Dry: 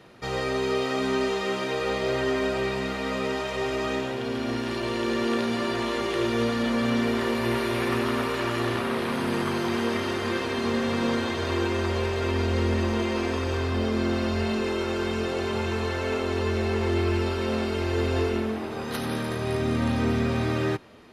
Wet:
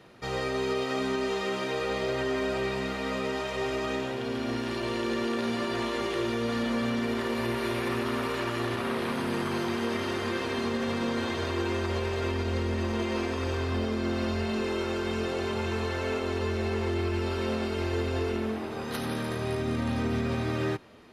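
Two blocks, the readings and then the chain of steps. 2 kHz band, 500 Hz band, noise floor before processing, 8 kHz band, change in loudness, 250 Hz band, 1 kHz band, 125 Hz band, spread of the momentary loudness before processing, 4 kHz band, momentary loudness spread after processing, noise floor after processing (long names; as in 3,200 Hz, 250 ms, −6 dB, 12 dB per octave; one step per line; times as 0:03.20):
−3.5 dB, −3.5 dB, −31 dBFS, −3.0 dB, −3.5 dB, −3.5 dB, −3.5 dB, −3.5 dB, 4 LU, −3.5 dB, 2 LU, −34 dBFS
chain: brickwall limiter −18 dBFS, peak gain reduction 5 dB
level −2.5 dB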